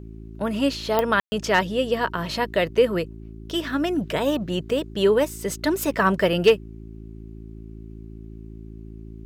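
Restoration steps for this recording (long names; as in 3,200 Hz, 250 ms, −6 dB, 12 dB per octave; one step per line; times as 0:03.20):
clipped peaks rebuilt −7.5 dBFS
click removal
hum removal 54.7 Hz, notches 7
ambience match 0:01.20–0:01.32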